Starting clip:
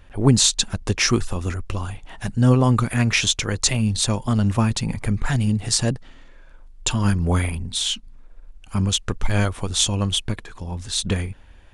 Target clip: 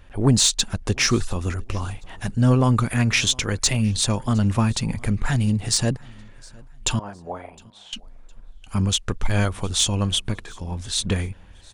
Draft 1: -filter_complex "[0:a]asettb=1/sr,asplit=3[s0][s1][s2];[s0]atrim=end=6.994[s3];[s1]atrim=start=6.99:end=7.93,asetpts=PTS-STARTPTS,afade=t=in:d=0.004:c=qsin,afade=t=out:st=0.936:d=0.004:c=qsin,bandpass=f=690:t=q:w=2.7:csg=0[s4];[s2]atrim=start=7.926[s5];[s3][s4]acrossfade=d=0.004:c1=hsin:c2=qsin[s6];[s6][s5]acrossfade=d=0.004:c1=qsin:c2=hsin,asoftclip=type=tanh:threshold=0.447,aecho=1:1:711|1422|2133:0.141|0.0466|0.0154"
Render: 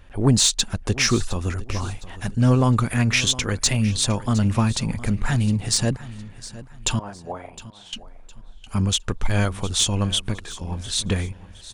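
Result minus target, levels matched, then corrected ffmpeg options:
echo-to-direct +9 dB
-filter_complex "[0:a]asettb=1/sr,asplit=3[s0][s1][s2];[s0]atrim=end=6.994[s3];[s1]atrim=start=6.99:end=7.93,asetpts=PTS-STARTPTS,afade=t=in:d=0.004:c=qsin,afade=t=out:st=0.936:d=0.004:c=qsin,bandpass=f=690:t=q:w=2.7:csg=0[s4];[s2]atrim=start=7.926[s5];[s3][s4]acrossfade=d=0.004:c1=hsin:c2=qsin[s6];[s6][s5]acrossfade=d=0.004:c1=qsin:c2=hsin,asoftclip=type=tanh:threshold=0.447,aecho=1:1:711|1422:0.0501|0.0165"

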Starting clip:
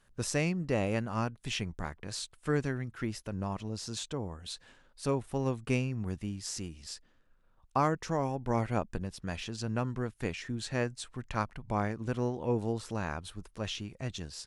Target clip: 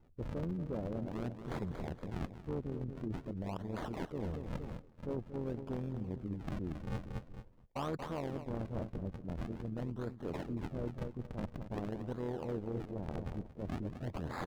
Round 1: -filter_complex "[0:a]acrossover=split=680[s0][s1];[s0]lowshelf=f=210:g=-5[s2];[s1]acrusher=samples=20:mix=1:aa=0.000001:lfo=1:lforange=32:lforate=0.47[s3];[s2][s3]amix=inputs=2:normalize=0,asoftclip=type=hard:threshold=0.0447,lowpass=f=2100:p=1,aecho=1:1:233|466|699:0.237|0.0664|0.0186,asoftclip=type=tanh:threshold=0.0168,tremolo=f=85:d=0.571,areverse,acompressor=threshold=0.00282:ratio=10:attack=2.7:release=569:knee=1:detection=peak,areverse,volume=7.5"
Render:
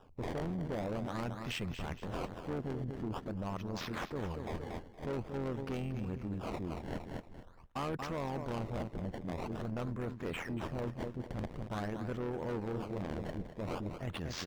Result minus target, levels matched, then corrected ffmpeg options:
decimation with a swept rate: distortion -28 dB; saturation: distortion +16 dB
-filter_complex "[0:a]acrossover=split=680[s0][s1];[s0]lowshelf=f=210:g=-5[s2];[s1]acrusher=samples=74:mix=1:aa=0.000001:lfo=1:lforange=118:lforate=0.47[s3];[s2][s3]amix=inputs=2:normalize=0,asoftclip=type=hard:threshold=0.0447,lowpass=f=2100:p=1,aecho=1:1:233|466|699:0.237|0.0664|0.0186,asoftclip=type=tanh:threshold=0.0631,tremolo=f=85:d=0.571,areverse,acompressor=threshold=0.00282:ratio=10:attack=2.7:release=569:knee=1:detection=peak,areverse,volume=7.5"

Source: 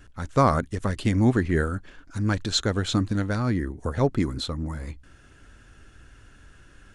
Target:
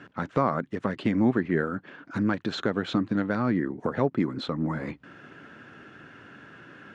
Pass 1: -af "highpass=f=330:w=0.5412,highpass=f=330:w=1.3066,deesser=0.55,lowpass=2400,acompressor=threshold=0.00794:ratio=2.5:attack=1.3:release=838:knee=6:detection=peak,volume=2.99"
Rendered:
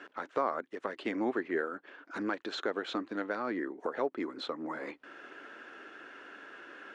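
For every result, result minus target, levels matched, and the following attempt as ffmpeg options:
125 Hz band -17.0 dB; compression: peak gain reduction +5.5 dB
-af "highpass=f=150:w=0.5412,highpass=f=150:w=1.3066,deesser=0.55,lowpass=2400,acompressor=threshold=0.00794:ratio=2.5:attack=1.3:release=838:knee=6:detection=peak,volume=2.99"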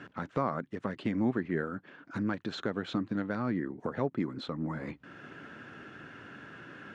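compression: peak gain reduction +6.5 dB
-af "highpass=f=150:w=0.5412,highpass=f=150:w=1.3066,deesser=0.55,lowpass=2400,acompressor=threshold=0.0282:ratio=2.5:attack=1.3:release=838:knee=6:detection=peak,volume=2.99"

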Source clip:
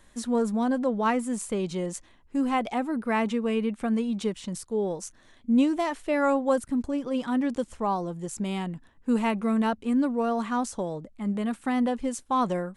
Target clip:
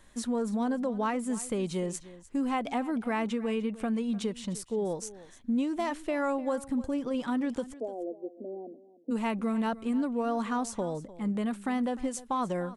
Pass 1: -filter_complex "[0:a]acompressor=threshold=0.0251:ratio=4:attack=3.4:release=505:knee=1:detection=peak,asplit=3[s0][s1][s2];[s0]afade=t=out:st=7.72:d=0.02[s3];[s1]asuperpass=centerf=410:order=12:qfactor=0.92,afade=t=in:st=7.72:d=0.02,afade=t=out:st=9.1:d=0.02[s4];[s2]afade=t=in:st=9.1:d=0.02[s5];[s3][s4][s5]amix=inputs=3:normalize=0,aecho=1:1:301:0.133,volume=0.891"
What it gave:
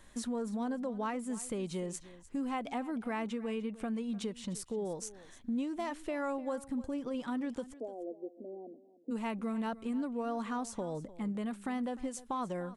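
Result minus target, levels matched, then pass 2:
compression: peak gain reduction +6 dB
-filter_complex "[0:a]acompressor=threshold=0.0631:ratio=4:attack=3.4:release=505:knee=1:detection=peak,asplit=3[s0][s1][s2];[s0]afade=t=out:st=7.72:d=0.02[s3];[s1]asuperpass=centerf=410:order=12:qfactor=0.92,afade=t=in:st=7.72:d=0.02,afade=t=out:st=9.1:d=0.02[s4];[s2]afade=t=in:st=9.1:d=0.02[s5];[s3][s4][s5]amix=inputs=3:normalize=0,aecho=1:1:301:0.133,volume=0.891"

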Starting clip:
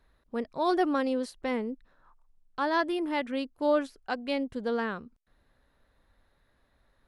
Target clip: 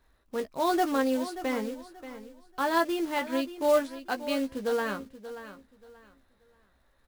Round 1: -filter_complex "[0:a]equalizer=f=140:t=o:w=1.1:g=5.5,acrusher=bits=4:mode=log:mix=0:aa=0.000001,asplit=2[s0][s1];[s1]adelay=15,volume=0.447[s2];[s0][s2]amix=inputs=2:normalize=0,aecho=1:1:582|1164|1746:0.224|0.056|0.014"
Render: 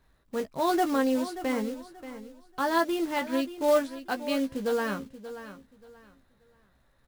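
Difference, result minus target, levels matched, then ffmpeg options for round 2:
125 Hz band +3.5 dB
-filter_complex "[0:a]equalizer=f=140:t=o:w=1.1:g=-2.5,acrusher=bits=4:mode=log:mix=0:aa=0.000001,asplit=2[s0][s1];[s1]adelay=15,volume=0.447[s2];[s0][s2]amix=inputs=2:normalize=0,aecho=1:1:582|1164|1746:0.224|0.056|0.014"

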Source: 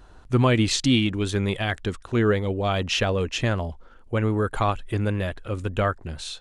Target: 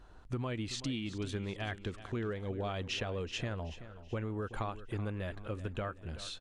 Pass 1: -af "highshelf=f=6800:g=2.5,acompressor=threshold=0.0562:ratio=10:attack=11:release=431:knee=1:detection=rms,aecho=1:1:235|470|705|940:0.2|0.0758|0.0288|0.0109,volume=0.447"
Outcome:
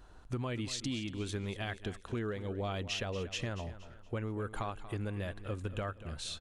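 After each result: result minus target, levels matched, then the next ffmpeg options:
echo 144 ms early; 8 kHz band +3.5 dB
-af "highshelf=f=6800:g=2.5,acompressor=threshold=0.0562:ratio=10:attack=11:release=431:knee=1:detection=rms,aecho=1:1:379|758|1137|1516:0.2|0.0758|0.0288|0.0109,volume=0.447"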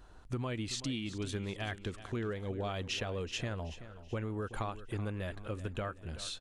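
8 kHz band +3.5 dB
-af "highshelf=f=6800:g=-6.5,acompressor=threshold=0.0562:ratio=10:attack=11:release=431:knee=1:detection=rms,aecho=1:1:379|758|1137|1516:0.2|0.0758|0.0288|0.0109,volume=0.447"

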